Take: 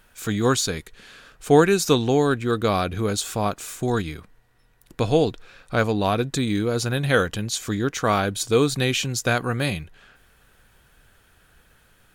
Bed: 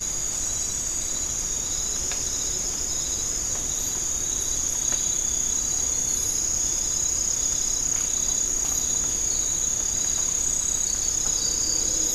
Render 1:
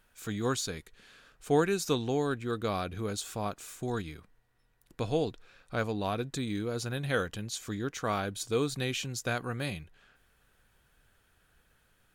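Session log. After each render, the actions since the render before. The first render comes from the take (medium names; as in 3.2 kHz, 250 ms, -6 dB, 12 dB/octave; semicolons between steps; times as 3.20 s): trim -10.5 dB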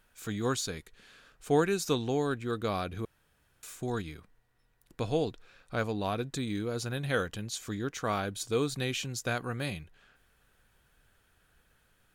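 3.05–3.63 s: room tone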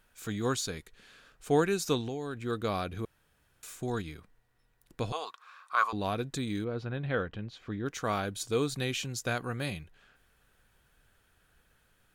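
2.00–2.44 s: compression 12:1, threshold -31 dBFS; 5.12–5.93 s: resonant high-pass 1.1 kHz, resonance Q 12; 6.64–7.86 s: distance through air 350 m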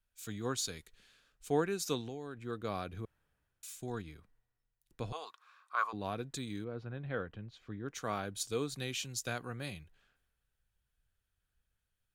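compression 1.5:1, threshold -49 dBFS, peak gain reduction 10.5 dB; three bands expanded up and down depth 70%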